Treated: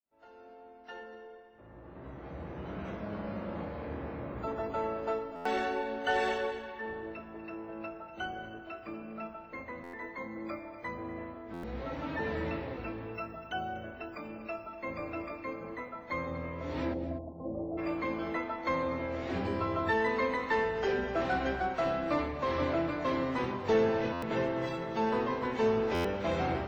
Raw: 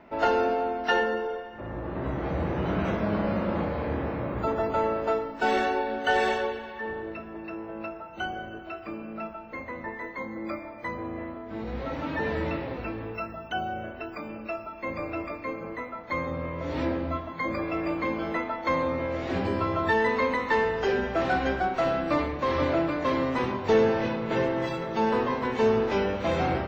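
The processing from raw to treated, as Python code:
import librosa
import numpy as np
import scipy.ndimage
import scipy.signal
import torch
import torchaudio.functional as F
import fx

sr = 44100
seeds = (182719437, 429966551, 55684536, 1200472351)

y = fx.fade_in_head(x, sr, length_s=6.47)
y = fx.steep_lowpass(y, sr, hz=820.0, slope=48, at=(16.93, 17.77), fade=0.02)
y = y + 10.0 ** (-15.0 / 20.0) * np.pad(y, (int(244 * sr / 1000.0), 0))[:len(y)]
y = fx.buffer_glitch(y, sr, at_s=(5.35, 9.83, 11.53, 24.12, 25.94), block=512, repeats=8)
y = y * librosa.db_to_amplitude(-5.5)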